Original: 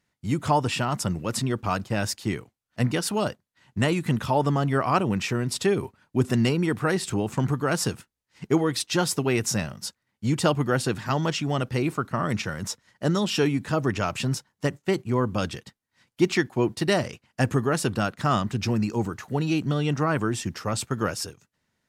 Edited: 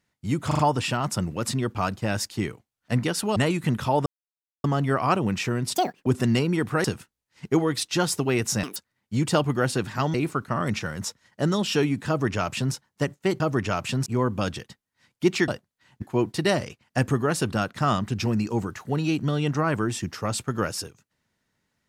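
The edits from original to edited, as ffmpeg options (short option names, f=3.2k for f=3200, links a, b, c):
-filter_complex "[0:a]asplit=16[a][b][c][d][e][f][g][h][i][j][k][l][m][n][o][p];[a]atrim=end=0.512[q];[b]atrim=start=0.468:end=0.512[r];[c]atrim=start=0.468:end=0.512[s];[d]atrim=start=0.468:end=3.242[t];[e]atrim=start=3.778:end=4.48,asetpts=PTS-STARTPTS,afade=t=out:st=0.698:d=0.004:c=hsin,apad=pad_dur=0.58[u];[f]atrim=start=4.48:end=5.594,asetpts=PTS-STARTPTS,afade=t=in:d=0.004:c=hsin[v];[g]atrim=start=5.59:end=6.16,asetpts=PTS-STARTPTS,asetrate=80703,aresample=44100,atrim=end_sample=13736,asetpts=PTS-STARTPTS[w];[h]atrim=start=6.156:end=6.942[x];[i]atrim=start=7.828:end=9.624[y];[j]atrim=start=9.62:end=9.87,asetpts=PTS-STARTPTS,asetrate=85113,aresample=44100,atrim=end_sample=5712,asetpts=PTS-STARTPTS[z];[k]atrim=start=9.866:end=11.252[aa];[l]atrim=start=11.768:end=15.032[ab];[m]atrim=start=13.708:end=14.372[ac];[n]atrim=start=15.028:end=16.452[ad];[o]atrim=start=3.238:end=3.782[ae];[p]atrim=start=16.448[af];[q][r]acrossfade=d=0.004:c1=hsin:c2=hsin[ag];[ag][s]acrossfade=d=0.004:c1=hsin:c2=hsin[ah];[ah][t]acrossfade=d=0.004:c1=hsin:c2=hsin[ai];[u][v]concat=n=2:v=0:a=1[aj];[ai][aj]acrossfade=d=0.004:c1=hsin:c2=hsin[ak];[ak][w]acrossfade=d=0.004:c1=hsin:c2=hsin[al];[al][x]acrossfade=d=0.004:c1=hsin:c2=hsin[am];[am][y]acrossfade=d=0.004:c1=hsin:c2=hsin[an];[an][z]acrossfade=d=0.004:c1=hsin:c2=hsin[ao];[ao][aa]acrossfade=d=0.004:c1=hsin:c2=hsin[ap];[ap][ab]acrossfade=d=0.004:c1=hsin:c2=hsin[aq];[aq][ac]acrossfade=d=0.004:c1=hsin:c2=hsin[ar];[ar][ad]acrossfade=d=0.004:c1=hsin:c2=hsin[as];[as][ae]acrossfade=d=0.004:c1=hsin:c2=hsin[at];[at][af]acrossfade=d=0.004:c1=hsin:c2=hsin"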